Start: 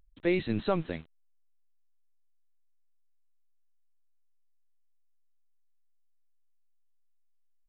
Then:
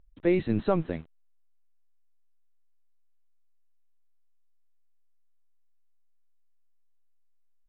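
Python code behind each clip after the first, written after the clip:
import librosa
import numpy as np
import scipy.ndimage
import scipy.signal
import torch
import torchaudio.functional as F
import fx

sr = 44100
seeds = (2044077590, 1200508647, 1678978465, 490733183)

y = fx.lowpass(x, sr, hz=1200.0, slope=6)
y = y * librosa.db_to_amplitude(4.0)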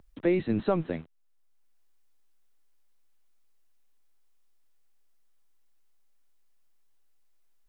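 y = fx.band_squash(x, sr, depth_pct=40)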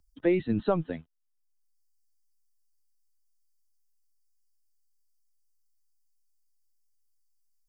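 y = fx.bin_expand(x, sr, power=1.5)
y = y * librosa.db_to_amplitude(1.5)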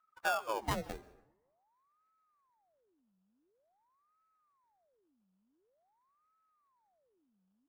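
y = fx.sample_hold(x, sr, seeds[0], rate_hz=2000.0, jitter_pct=0)
y = fx.rev_plate(y, sr, seeds[1], rt60_s=0.89, hf_ratio=0.6, predelay_ms=120, drr_db=18.0)
y = fx.ring_lfo(y, sr, carrier_hz=740.0, swing_pct=75, hz=0.47)
y = y * librosa.db_to_amplitude(-6.0)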